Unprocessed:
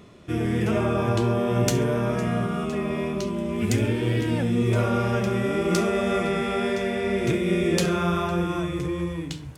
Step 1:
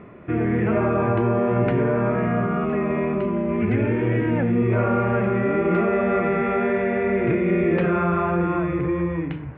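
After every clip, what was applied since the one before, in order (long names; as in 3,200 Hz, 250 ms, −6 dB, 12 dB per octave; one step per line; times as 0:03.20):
Butterworth low-pass 2,300 Hz 36 dB per octave
low-shelf EQ 99 Hz −7.5 dB
in parallel at +2 dB: brickwall limiter −24 dBFS, peak gain reduction 11.5 dB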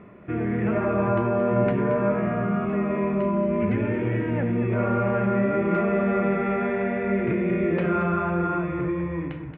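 tuned comb filter 200 Hz, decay 0.53 s, harmonics odd, mix 70%
on a send: single-tap delay 227 ms −9.5 dB
on the sum: level +5.5 dB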